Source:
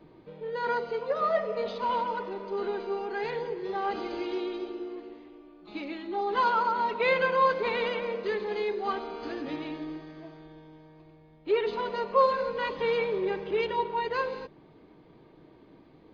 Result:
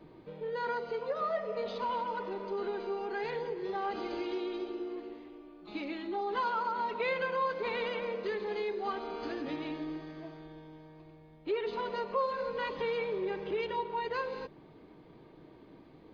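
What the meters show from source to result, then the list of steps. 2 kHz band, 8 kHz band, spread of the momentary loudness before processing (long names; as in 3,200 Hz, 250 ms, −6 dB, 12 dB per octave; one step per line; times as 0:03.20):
−6.0 dB, can't be measured, 15 LU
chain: downward compressor 2 to 1, threshold −35 dBFS, peak gain reduction 10 dB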